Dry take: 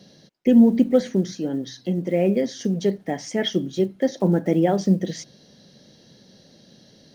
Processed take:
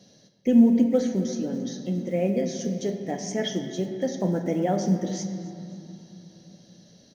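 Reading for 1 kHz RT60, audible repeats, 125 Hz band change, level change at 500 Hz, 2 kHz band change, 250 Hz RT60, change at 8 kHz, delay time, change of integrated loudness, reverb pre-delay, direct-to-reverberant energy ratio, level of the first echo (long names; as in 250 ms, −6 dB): 3.0 s, 1, −4.0 dB, −4.5 dB, −5.0 dB, 3.8 s, can't be measured, 272 ms, −3.5 dB, 4 ms, 4.5 dB, −21.5 dB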